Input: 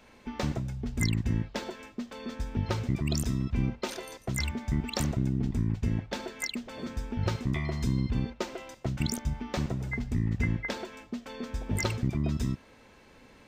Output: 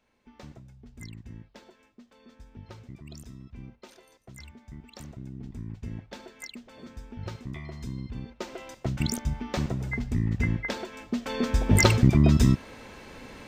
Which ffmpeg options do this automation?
ffmpeg -i in.wav -af "volume=10.5dB,afade=type=in:start_time=4.94:duration=1.02:silence=0.421697,afade=type=in:start_time=8.26:duration=0.46:silence=0.316228,afade=type=in:start_time=10.92:duration=0.47:silence=0.375837" out.wav

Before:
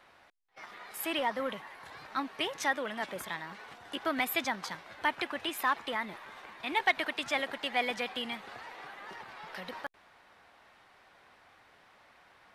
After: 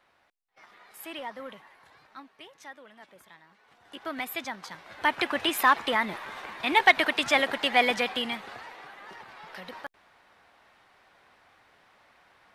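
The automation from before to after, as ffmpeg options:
ffmpeg -i in.wav -af "volume=17dB,afade=type=out:start_time=1.67:duration=0.68:silence=0.375837,afade=type=in:start_time=3.62:duration=0.5:silence=0.251189,afade=type=in:start_time=4.7:duration=0.67:silence=0.266073,afade=type=out:start_time=7.85:duration=0.98:silence=0.375837" out.wav

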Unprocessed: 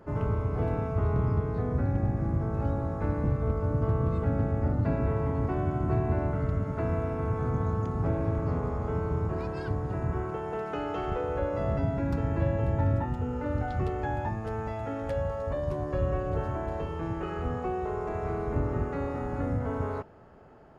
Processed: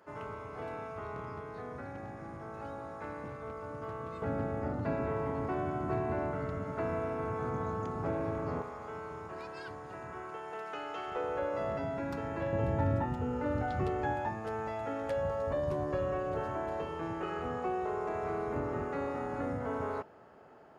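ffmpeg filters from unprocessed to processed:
ffmpeg -i in.wav -af "asetnsamples=nb_out_samples=441:pad=0,asendcmd='4.22 highpass f 390;8.62 highpass f 1400;11.15 highpass f 570;12.53 highpass f 160;14.13 highpass f 360;15.23 highpass f 160;15.95 highpass f 370',highpass=frequency=1300:poles=1" out.wav

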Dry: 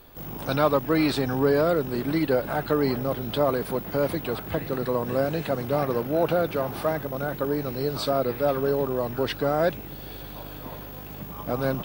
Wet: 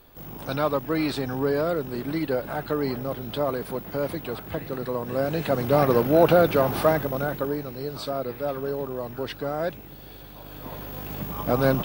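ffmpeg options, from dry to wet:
ffmpeg -i in.wav -af "volume=16dB,afade=type=in:start_time=5.09:duration=0.82:silence=0.354813,afade=type=out:start_time=6.8:duration=0.88:silence=0.281838,afade=type=in:start_time=10.39:duration=0.75:silence=0.316228" out.wav

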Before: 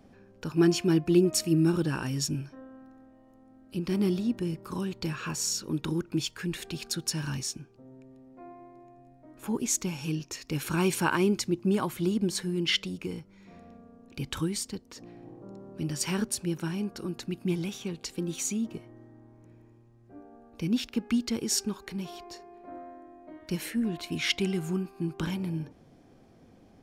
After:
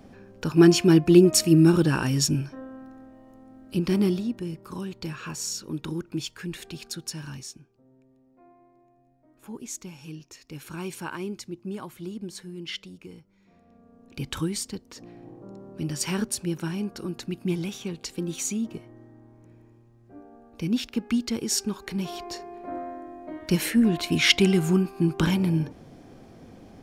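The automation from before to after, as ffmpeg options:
ffmpeg -i in.wav -af "volume=24.5dB,afade=type=out:start_time=3.78:duration=0.54:silence=0.375837,afade=type=out:start_time=6.63:duration=1.12:silence=0.446684,afade=type=in:start_time=13.65:duration=0.55:silence=0.298538,afade=type=in:start_time=21.61:duration=0.81:silence=0.446684" out.wav

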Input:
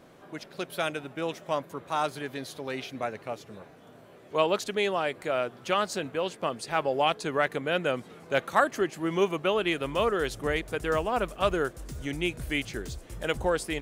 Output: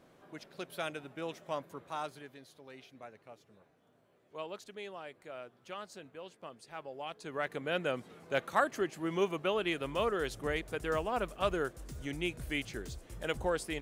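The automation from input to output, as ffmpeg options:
ffmpeg -i in.wav -af "volume=3.5dB,afade=type=out:start_time=1.74:duration=0.66:silence=0.334965,afade=type=in:start_time=7.08:duration=0.65:silence=0.266073" out.wav

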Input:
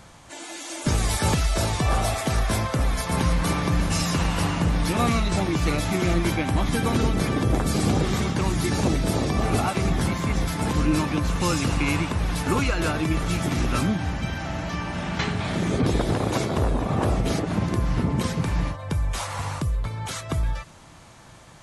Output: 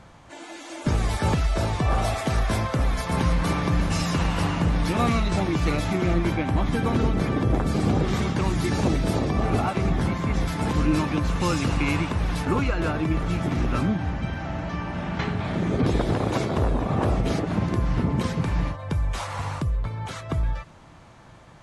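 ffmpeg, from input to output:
ffmpeg -i in.wav -af "asetnsamples=nb_out_samples=441:pad=0,asendcmd='1.98 lowpass f 4100;5.93 lowpass f 2100;8.08 lowpass f 4300;9.19 lowpass f 2300;10.34 lowpass f 4300;12.45 lowpass f 1800;15.79 lowpass f 3800;19.63 lowpass f 2200',lowpass=frequency=2200:poles=1" out.wav

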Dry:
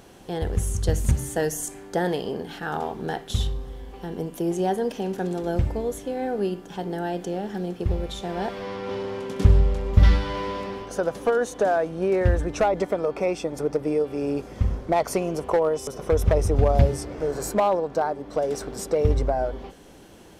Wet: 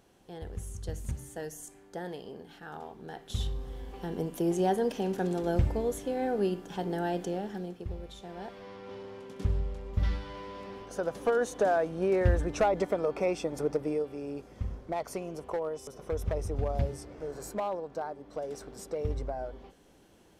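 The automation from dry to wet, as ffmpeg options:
ffmpeg -i in.wav -af "volume=6dB,afade=type=in:start_time=3.11:duration=0.68:silence=0.266073,afade=type=out:start_time=7.18:duration=0.67:silence=0.298538,afade=type=in:start_time=10.5:duration=0.93:silence=0.354813,afade=type=out:start_time=13.67:duration=0.56:silence=0.421697" out.wav

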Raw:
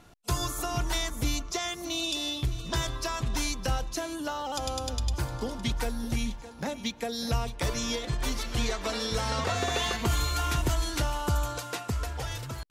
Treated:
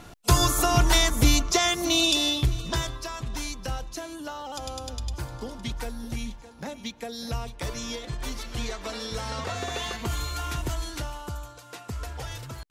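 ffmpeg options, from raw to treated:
ffmpeg -i in.wav -af "volume=20.5dB,afade=type=out:start_time=2:duration=1:silence=0.237137,afade=type=out:start_time=10.82:duration=0.75:silence=0.334965,afade=type=in:start_time=11.57:duration=0.54:silence=0.281838" out.wav

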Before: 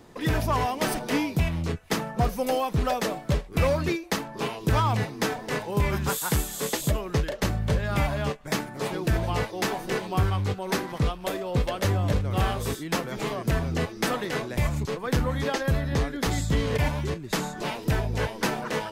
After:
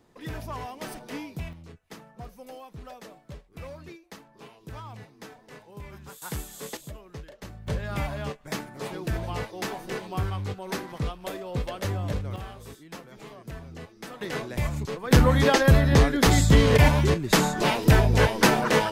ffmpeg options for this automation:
ffmpeg -i in.wav -af "asetnsamples=nb_out_samples=441:pad=0,asendcmd='1.53 volume volume -18dB;6.22 volume volume -9dB;6.77 volume volume -16dB;7.67 volume volume -5dB;12.36 volume volume -14.5dB;14.21 volume volume -2.5dB;15.11 volume volume 7.5dB',volume=-11dB" out.wav

